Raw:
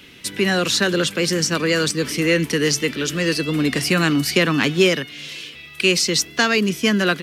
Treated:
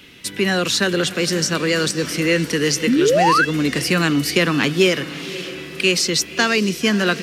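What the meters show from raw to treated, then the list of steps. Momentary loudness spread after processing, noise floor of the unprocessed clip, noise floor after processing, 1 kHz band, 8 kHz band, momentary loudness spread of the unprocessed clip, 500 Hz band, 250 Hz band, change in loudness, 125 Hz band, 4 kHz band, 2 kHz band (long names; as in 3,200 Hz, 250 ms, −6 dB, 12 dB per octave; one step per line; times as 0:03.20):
7 LU, −41 dBFS, −35 dBFS, +6.0 dB, 0.0 dB, 6 LU, +1.5 dB, +1.0 dB, +0.5 dB, 0.0 dB, 0.0 dB, +0.5 dB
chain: feedback delay with all-pass diffusion 562 ms, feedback 58%, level −14.5 dB
sound drawn into the spectrogram rise, 0:02.87–0:03.45, 210–1,700 Hz −15 dBFS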